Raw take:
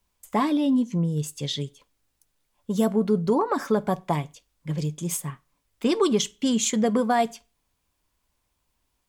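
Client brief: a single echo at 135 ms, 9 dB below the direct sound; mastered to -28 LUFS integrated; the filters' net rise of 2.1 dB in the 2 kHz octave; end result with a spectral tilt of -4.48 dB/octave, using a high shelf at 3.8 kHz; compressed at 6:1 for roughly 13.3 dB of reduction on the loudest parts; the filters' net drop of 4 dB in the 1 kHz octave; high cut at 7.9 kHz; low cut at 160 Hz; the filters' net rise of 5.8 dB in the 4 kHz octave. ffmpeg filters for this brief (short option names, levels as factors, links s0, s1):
-af "highpass=160,lowpass=7900,equalizer=f=1000:t=o:g=-6.5,equalizer=f=2000:t=o:g=3.5,highshelf=f=3800:g=-4,equalizer=f=4000:t=o:g=9,acompressor=threshold=0.0224:ratio=6,aecho=1:1:135:0.355,volume=2.66"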